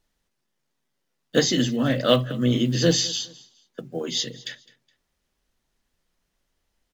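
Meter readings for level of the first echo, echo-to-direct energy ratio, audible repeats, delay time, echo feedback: -21.5 dB, -21.0 dB, 2, 0.209 s, 33%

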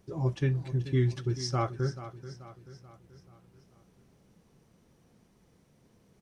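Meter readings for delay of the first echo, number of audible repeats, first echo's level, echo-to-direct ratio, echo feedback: 0.434 s, 4, -13.5 dB, -12.5 dB, 49%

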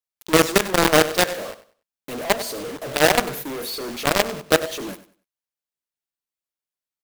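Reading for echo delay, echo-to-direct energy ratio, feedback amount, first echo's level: 96 ms, -14.5 dB, 24%, -15.0 dB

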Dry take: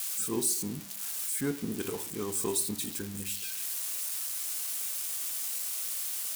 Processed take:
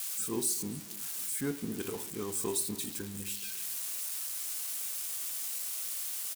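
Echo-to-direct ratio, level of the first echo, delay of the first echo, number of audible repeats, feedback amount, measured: -18.0 dB, -19.0 dB, 0.275 s, 3, 45%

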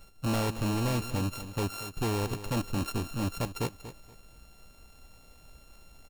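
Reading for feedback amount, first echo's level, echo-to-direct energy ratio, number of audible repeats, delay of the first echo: 25%, -13.0 dB, -12.5 dB, 2, 0.237 s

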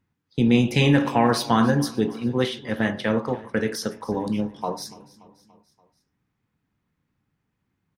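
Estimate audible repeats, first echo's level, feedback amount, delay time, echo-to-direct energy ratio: 3, -20.5 dB, 57%, 0.288 s, -19.0 dB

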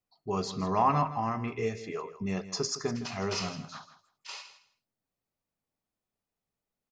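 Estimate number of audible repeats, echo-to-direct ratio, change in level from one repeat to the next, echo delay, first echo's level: 2, -14.0 dB, -15.5 dB, 0.161 s, -14.0 dB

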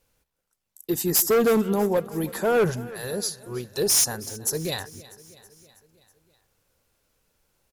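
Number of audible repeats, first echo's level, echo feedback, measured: 4, -19.5 dB, 60%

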